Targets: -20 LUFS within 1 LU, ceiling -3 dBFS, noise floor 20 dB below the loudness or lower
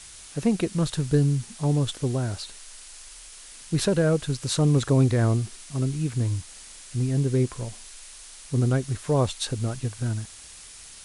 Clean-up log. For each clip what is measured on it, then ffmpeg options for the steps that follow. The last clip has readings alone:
noise floor -45 dBFS; noise floor target -46 dBFS; loudness -25.5 LUFS; peak -9.5 dBFS; loudness target -20.0 LUFS
-> -af "afftdn=nr=6:nf=-45"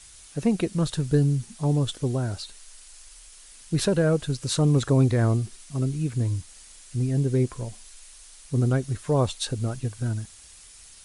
noise floor -49 dBFS; loudness -25.5 LUFS; peak -10.0 dBFS; loudness target -20.0 LUFS
-> -af "volume=5.5dB"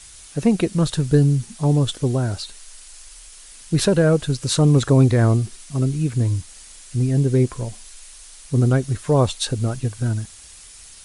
loudness -20.0 LUFS; peak -4.5 dBFS; noise floor -43 dBFS

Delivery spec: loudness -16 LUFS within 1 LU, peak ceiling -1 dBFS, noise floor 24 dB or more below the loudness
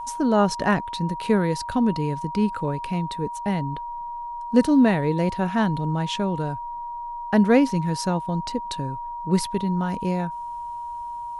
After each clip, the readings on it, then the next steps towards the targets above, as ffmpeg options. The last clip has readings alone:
steady tone 950 Hz; tone level -30 dBFS; loudness -24.0 LUFS; peak -5.0 dBFS; loudness target -16.0 LUFS
-> -af "bandreject=f=950:w=30"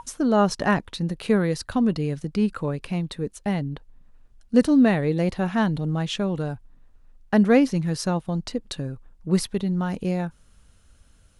steady tone none; loudness -24.0 LUFS; peak -5.0 dBFS; loudness target -16.0 LUFS
-> -af "volume=8dB,alimiter=limit=-1dB:level=0:latency=1"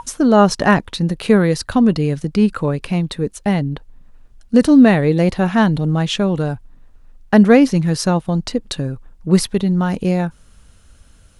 loudness -16.0 LUFS; peak -1.0 dBFS; noise floor -48 dBFS

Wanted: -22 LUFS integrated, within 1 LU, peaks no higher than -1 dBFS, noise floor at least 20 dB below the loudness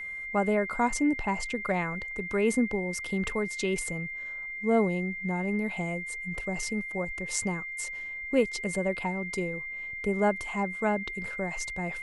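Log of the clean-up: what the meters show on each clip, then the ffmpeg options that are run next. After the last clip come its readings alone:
steady tone 2100 Hz; tone level -35 dBFS; loudness -30.0 LUFS; peak -11.5 dBFS; loudness target -22.0 LUFS
-> -af "bandreject=f=2.1k:w=30"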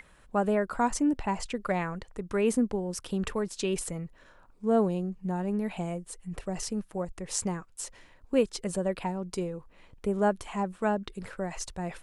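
steady tone none; loudness -31.0 LUFS; peak -12.0 dBFS; loudness target -22.0 LUFS
-> -af "volume=9dB"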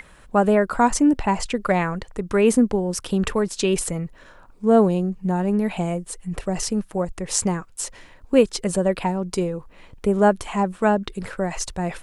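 loudness -22.0 LUFS; peak -3.0 dBFS; noise floor -49 dBFS

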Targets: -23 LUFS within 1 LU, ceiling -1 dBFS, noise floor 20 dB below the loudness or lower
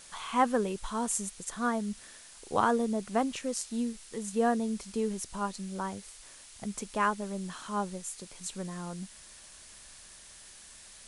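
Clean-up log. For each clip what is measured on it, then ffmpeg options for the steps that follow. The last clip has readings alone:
noise floor -52 dBFS; noise floor target -53 dBFS; loudness -32.5 LUFS; peak -12.0 dBFS; loudness target -23.0 LUFS
-> -af "afftdn=nr=6:nf=-52"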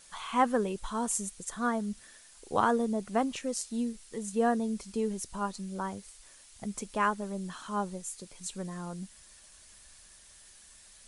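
noise floor -56 dBFS; loudness -32.5 LUFS; peak -12.0 dBFS; loudness target -23.0 LUFS
-> -af "volume=9.5dB"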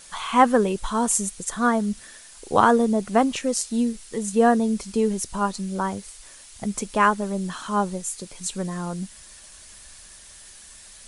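loudness -23.0 LUFS; peak -2.5 dBFS; noise floor -46 dBFS

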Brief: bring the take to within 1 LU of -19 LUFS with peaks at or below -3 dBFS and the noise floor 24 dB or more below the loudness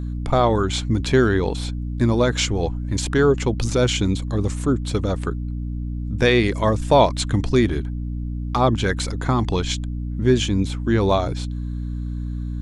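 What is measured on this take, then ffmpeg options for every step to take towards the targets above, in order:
hum 60 Hz; harmonics up to 300 Hz; hum level -24 dBFS; loudness -21.5 LUFS; peak -2.5 dBFS; loudness target -19.0 LUFS
-> -af "bandreject=f=60:t=h:w=6,bandreject=f=120:t=h:w=6,bandreject=f=180:t=h:w=6,bandreject=f=240:t=h:w=6,bandreject=f=300:t=h:w=6"
-af "volume=2.5dB,alimiter=limit=-3dB:level=0:latency=1"

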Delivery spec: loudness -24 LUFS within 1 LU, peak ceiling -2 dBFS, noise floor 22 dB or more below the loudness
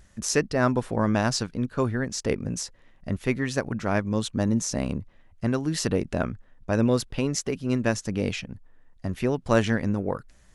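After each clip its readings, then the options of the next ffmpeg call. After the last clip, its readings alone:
loudness -27.0 LUFS; peak -5.5 dBFS; loudness target -24.0 LUFS
-> -af "volume=3dB"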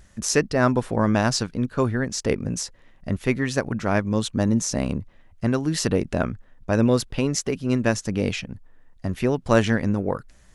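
loudness -24.0 LUFS; peak -2.5 dBFS; noise floor -54 dBFS

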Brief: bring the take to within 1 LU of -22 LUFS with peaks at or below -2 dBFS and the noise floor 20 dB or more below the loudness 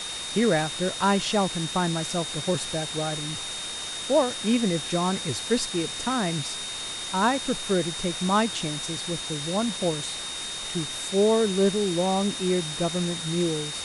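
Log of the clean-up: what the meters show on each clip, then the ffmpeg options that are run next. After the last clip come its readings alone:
steady tone 3700 Hz; tone level -34 dBFS; noise floor -34 dBFS; noise floor target -46 dBFS; loudness -26.0 LUFS; peak -10.0 dBFS; loudness target -22.0 LUFS
-> -af "bandreject=f=3.7k:w=30"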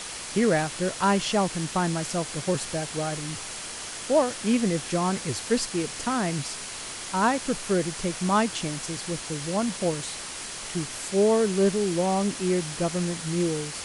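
steady tone none; noise floor -37 dBFS; noise floor target -47 dBFS
-> -af "afftdn=nr=10:nf=-37"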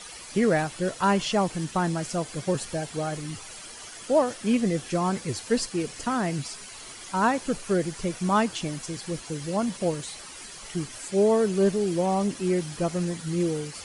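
noise floor -43 dBFS; noise floor target -47 dBFS
-> -af "afftdn=nr=6:nf=-43"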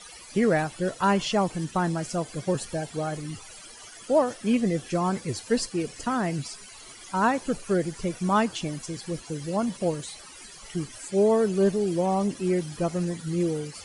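noise floor -46 dBFS; noise floor target -47 dBFS
-> -af "afftdn=nr=6:nf=-46"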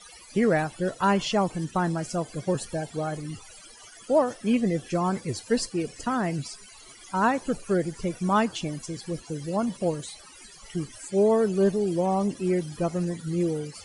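noise floor -49 dBFS; loudness -27.0 LUFS; peak -11.5 dBFS; loudness target -22.0 LUFS
-> -af "volume=5dB"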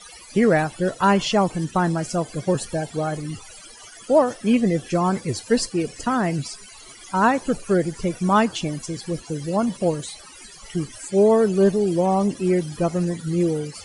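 loudness -22.0 LUFS; peak -6.5 dBFS; noise floor -44 dBFS

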